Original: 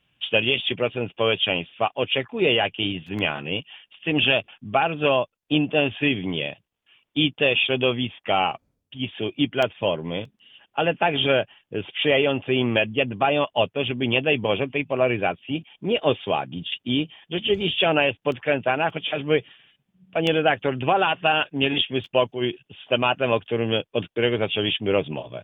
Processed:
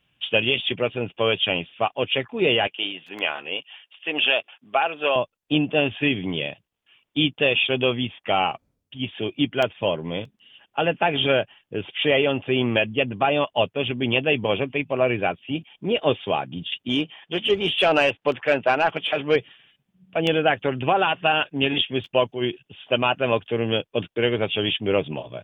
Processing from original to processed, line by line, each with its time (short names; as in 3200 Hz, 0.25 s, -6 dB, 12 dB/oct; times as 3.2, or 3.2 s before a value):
2.67–5.16 HPF 480 Hz
16.89–19.36 overdrive pedal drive 12 dB, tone 1900 Hz, clips at -6 dBFS